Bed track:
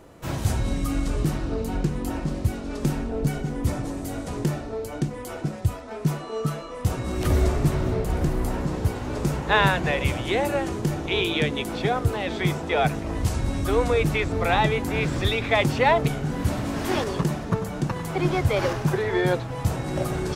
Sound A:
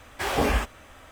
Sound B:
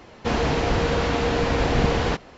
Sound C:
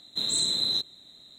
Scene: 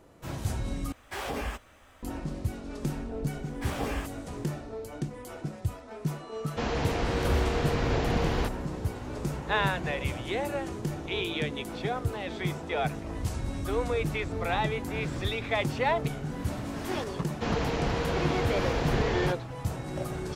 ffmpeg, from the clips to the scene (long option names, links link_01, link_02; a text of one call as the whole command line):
ffmpeg -i bed.wav -i cue0.wav -i cue1.wav -filter_complex "[1:a]asplit=2[link_01][link_02];[2:a]asplit=2[link_03][link_04];[0:a]volume=-7.5dB[link_05];[link_01]alimiter=limit=-16dB:level=0:latency=1:release=79[link_06];[link_05]asplit=2[link_07][link_08];[link_07]atrim=end=0.924[link_09];[link_06]atrim=end=1.11,asetpts=PTS-STARTPTS,volume=-7.5dB[link_10];[link_08]atrim=start=2.026[link_11];[link_02]atrim=end=1.11,asetpts=PTS-STARTPTS,volume=-10dB,afade=type=in:duration=0.004:curve=hsin,afade=type=out:start_time=1.106:duration=0.004:curve=hsin,adelay=3420[link_12];[link_03]atrim=end=2.37,asetpts=PTS-STARTPTS,volume=-7.5dB,afade=type=in:duration=0.004:curve=hsin,afade=type=out:start_time=2.366:duration=0.004:curve=hsin,adelay=6320[link_13];[link_04]atrim=end=2.37,asetpts=PTS-STARTPTS,volume=-7.5dB,afade=type=in:duration=0.004:curve=hsin,afade=type=out:start_time=2.366:duration=0.004:curve=hsin,adelay=756756S[link_14];[link_09][link_10]acrossfade=duration=0.004:curve1=hsin:curve2=hsin[link_15];[link_15][link_11]acrossfade=duration=0.004:curve1=hsin:curve2=hsin[link_16];[link_16][link_12][link_13][link_14]amix=inputs=4:normalize=0" out.wav